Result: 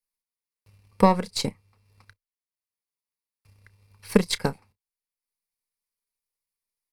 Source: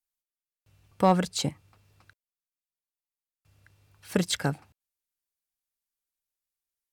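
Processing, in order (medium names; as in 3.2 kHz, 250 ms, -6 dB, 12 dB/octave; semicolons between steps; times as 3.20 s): partial rectifier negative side -3 dB; doubling 30 ms -13 dB; transient shaper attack +7 dB, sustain -5 dB; rippled EQ curve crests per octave 0.89, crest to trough 8 dB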